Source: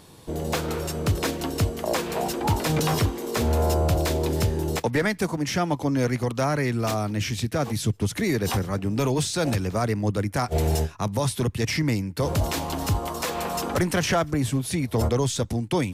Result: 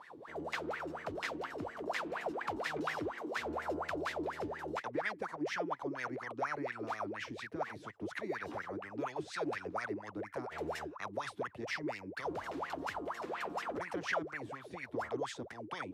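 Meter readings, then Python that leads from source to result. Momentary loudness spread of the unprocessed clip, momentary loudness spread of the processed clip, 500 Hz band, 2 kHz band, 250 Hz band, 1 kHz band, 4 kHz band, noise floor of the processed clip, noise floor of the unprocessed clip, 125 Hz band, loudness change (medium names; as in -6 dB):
4 LU, 5 LU, -13.0 dB, -8.0 dB, -16.5 dB, -10.0 dB, -17.0 dB, -53 dBFS, -41 dBFS, -28.0 dB, -14.5 dB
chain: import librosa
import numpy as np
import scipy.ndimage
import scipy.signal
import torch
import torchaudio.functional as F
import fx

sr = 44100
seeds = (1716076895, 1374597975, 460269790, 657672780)

y = fx.wah_lfo(x, sr, hz=4.2, low_hz=290.0, high_hz=2000.0, q=21.0)
y = fx.spectral_comp(y, sr, ratio=2.0)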